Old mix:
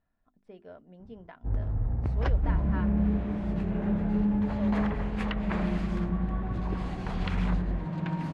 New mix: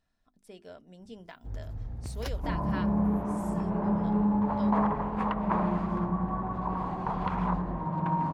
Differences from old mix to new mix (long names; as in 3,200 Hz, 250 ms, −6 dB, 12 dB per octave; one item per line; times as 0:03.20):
first sound −9.0 dB
second sound: add low-pass with resonance 1,000 Hz, resonance Q 4.2
master: remove low-pass filter 1,800 Hz 12 dB per octave